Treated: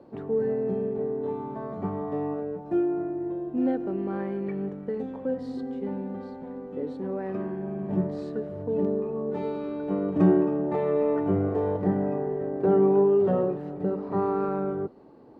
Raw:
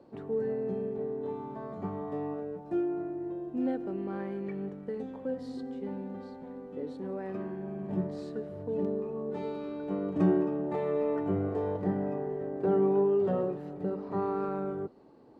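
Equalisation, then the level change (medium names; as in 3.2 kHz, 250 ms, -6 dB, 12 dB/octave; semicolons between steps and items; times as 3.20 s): treble shelf 3.7 kHz -9 dB; +5.5 dB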